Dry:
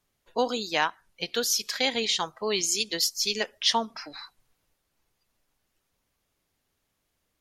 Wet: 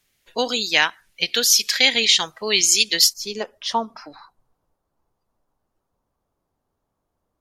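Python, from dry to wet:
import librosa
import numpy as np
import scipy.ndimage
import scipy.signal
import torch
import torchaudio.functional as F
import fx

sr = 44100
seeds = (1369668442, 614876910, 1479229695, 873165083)

y = fx.high_shelf_res(x, sr, hz=1500.0, db=fx.steps((0.0, 7.0), (3.12, -6.5), (4.14, -13.0)), q=1.5)
y = y * librosa.db_to_amplitude(3.0)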